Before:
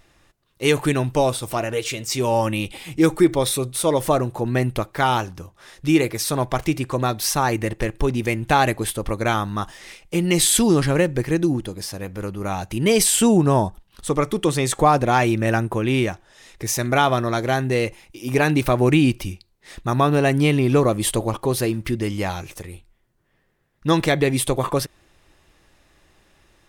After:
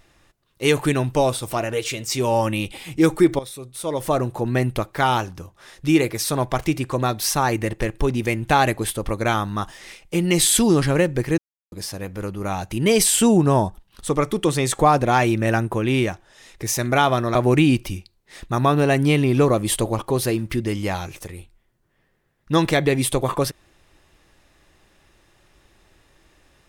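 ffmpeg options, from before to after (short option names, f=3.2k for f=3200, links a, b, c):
-filter_complex "[0:a]asplit=5[a][b][c][d][e];[a]atrim=end=3.39,asetpts=PTS-STARTPTS,afade=t=out:st=3.386:d=0.004:c=hsin:silence=0.188365[f];[b]atrim=start=3.39:end=11.38,asetpts=PTS-STARTPTS,afade=t=in:d=0.85:c=qua:silence=0.188365,afade=t=out:st=7.986:d=0.004:c=hsin[g];[c]atrim=start=11.38:end=11.72,asetpts=PTS-STARTPTS,volume=0[h];[d]atrim=start=11.72:end=17.352,asetpts=PTS-STARTPTS,afade=t=in:d=0.004:c=hsin[i];[e]atrim=start=18.698[j];[f][g][h][i]concat=n=4:v=0:a=1[k];[k][j]acrossfade=d=0.004:c1=hsin:c2=hsin"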